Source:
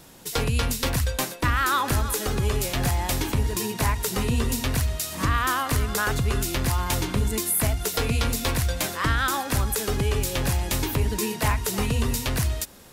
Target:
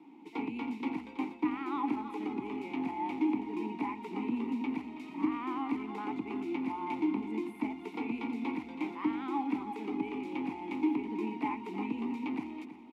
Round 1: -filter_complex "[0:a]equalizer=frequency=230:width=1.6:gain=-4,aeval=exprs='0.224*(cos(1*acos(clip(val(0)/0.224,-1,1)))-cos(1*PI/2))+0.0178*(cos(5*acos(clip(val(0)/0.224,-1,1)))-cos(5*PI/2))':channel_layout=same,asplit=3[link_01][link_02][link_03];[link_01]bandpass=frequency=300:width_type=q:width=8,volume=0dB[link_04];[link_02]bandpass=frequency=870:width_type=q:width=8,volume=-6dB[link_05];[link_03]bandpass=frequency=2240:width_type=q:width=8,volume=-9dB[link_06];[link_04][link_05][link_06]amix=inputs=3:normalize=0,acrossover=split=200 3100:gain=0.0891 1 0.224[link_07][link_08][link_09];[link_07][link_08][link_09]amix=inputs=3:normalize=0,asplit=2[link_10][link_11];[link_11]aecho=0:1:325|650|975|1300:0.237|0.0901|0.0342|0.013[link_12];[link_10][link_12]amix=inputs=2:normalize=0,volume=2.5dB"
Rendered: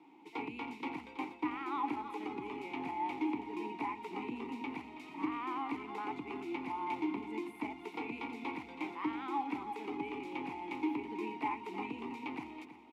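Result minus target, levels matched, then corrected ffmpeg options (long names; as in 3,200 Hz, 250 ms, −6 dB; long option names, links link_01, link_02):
250 Hz band −2.5 dB
-filter_complex "[0:a]equalizer=frequency=230:width=1.6:gain=7.5,aeval=exprs='0.224*(cos(1*acos(clip(val(0)/0.224,-1,1)))-cos(1*PI/2))+0.0178*(cos(5*acos(clip(val(0)/0.224,-1,1)))-cos(5*PI/2))':channel_layout=same,asplit=3[link_01][link_02][link_03];[link_01]bandpass=frequency=300:width_type=q:width=8,volume=0dB[link_04];[link_02]bandpass=frequency=870:width_type=q:width=8,volume=-6dB[link_05];[link_03]bandpass=frequency=2240:width_type=q:width=8,volume=-9dB[link_06];[link_04][link_05][link_06]amix=inputs=3:normalize=0,acrossover=split=200 3100:gain=0.0891 1 0.224[link_07][link_08][link_09];[link_07][link_08][link_09]amix=inputs=3:normalize=0,asplit=2[link_10][link_11];[link_11]aecho=0:1:325|650|975|1300:0.237|0.0901|0.0342|0.013[link_12];[link_10][link_12]amix=inputs=2:normalize=0,volume=2.5dB"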